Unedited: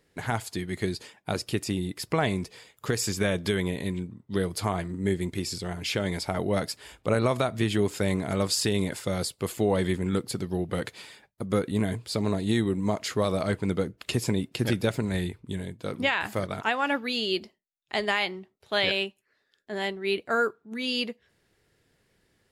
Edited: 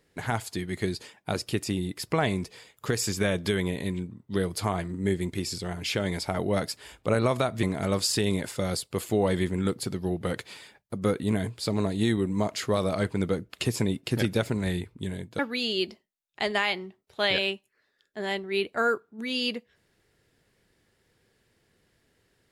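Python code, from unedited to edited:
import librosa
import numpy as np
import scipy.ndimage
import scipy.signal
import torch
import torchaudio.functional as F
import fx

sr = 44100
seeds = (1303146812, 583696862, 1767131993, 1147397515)

y = fx.edit(x, sr, fx.cut(start_s=7.63, length_s=0.48),
    fx.cut(start_s=15.87, length_s=1.05), tone=tone)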